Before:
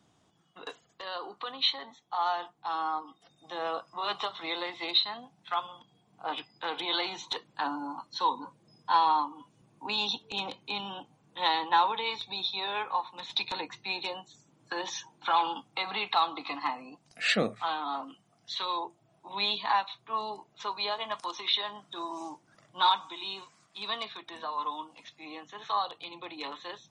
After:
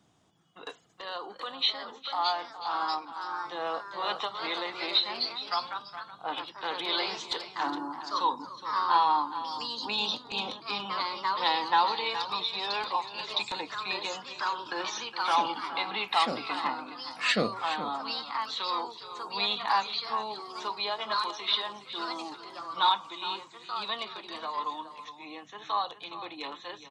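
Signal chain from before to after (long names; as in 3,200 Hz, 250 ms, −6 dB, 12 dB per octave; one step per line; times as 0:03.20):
single-tap delay 416 ms −12.5 dB
delay with pitch and tempo change per echo 797 ms, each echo +2 semitones, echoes 2, each echo −6 dB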